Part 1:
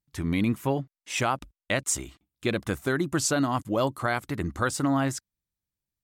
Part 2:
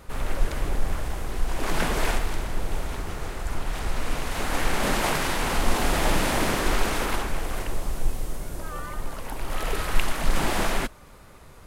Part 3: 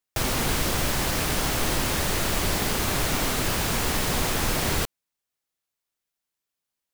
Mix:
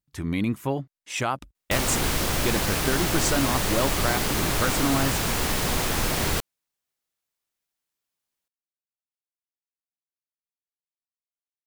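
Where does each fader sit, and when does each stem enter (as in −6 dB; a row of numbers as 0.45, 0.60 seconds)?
−0.5 dB, muted, 0.0 dB; 0.00 s, muted, 1.55 s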